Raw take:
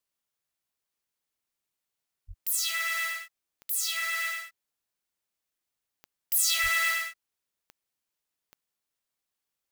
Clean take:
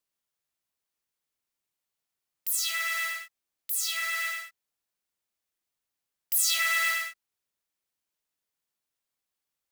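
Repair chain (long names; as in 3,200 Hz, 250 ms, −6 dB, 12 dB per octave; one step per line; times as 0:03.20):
click removal
0:02.27–0:02.39: high-pass filter 140 Hz 24 dB per octave
0:06.62–0:06.74: high-pass filter 140 Hz 24 dB per octave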